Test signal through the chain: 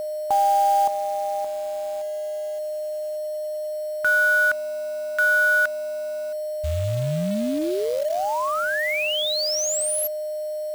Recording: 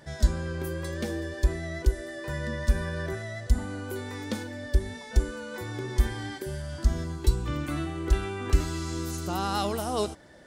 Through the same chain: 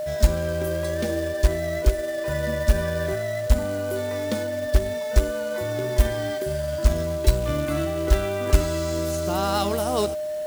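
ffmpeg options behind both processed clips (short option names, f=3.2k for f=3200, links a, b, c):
-af "aeval=exprs='val(0)+0.0316*sin(2*PI*610*n/s)':c=same,acrusher=bits=4:mode=log:mix=0:aa=0.000001,volume=4dB"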